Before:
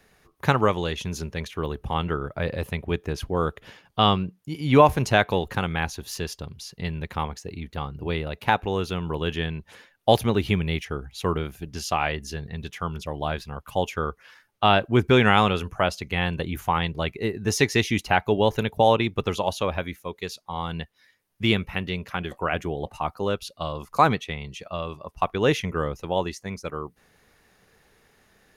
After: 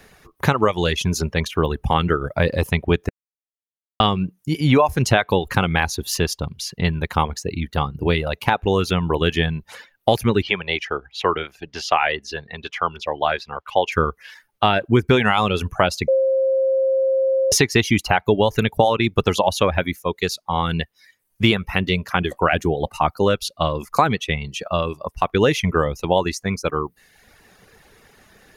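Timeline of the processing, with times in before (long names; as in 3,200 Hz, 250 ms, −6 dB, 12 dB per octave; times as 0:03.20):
0:03.09–0:04.00: silence
0:10.42–0:13.92: three-way crossover with the lows and the highs turned down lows −16 dB, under 400 Hz, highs −22 dB, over 5,000 Hz
0:16.08–0:17.52: beep over 532 Hz −22.5 dBFS
whole clip: downward compressor 6 to 1, threshold −22 dBFS; reverb reduction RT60 0.73 s; boost into a limiter +11.5 dB; level −1 dB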